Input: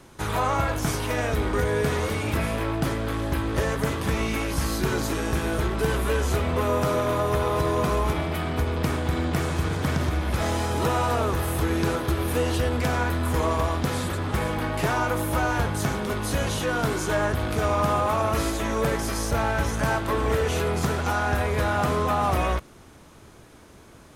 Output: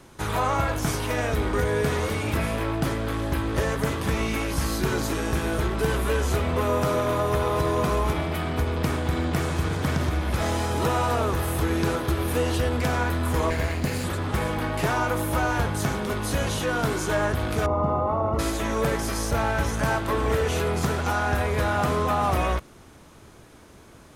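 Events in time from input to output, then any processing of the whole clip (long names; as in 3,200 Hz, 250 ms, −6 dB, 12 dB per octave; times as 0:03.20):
0:13.50–0:14.04: lower of the sound and its delayed copy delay 0.44 ms
0:17.66–0:18.39: Savitzky-Golay smoothing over 65 samples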